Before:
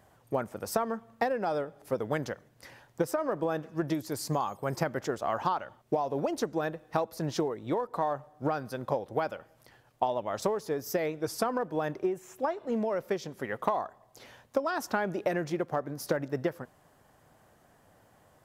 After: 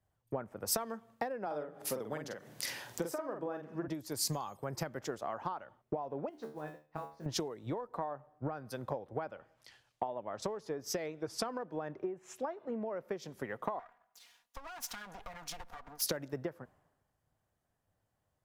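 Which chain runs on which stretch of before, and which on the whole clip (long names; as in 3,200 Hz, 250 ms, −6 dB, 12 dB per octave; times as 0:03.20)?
0:01.46–0:03.88: high-pass filter 130 Hz + upward compression, threshold −32 dBFS + double-tracking delay 47 ms −5 dB
0:06.29–0:07.26: low-pass filter 4,200 Hz + noise that follows the level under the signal 23 dB + tuned comb filter 75 Hz, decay 0.39 s, mix 90%
0:09.24–0:12.83: high-frequency loss of the air 58 metres + one half of a high-frequency compander encoder only
0:13.79–0:16.02: lower of the sound and its delayed copy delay 4.2 ms + low shelf with overshoot 590 Hz −8.5 dB, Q 1.5 + downward compressor 5 to 1, threshold −40 dBFS
whole clip: downward compressor 6 to 1, threshold −37 dBFS; multiband upward and downward expander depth 100%; level +1 dB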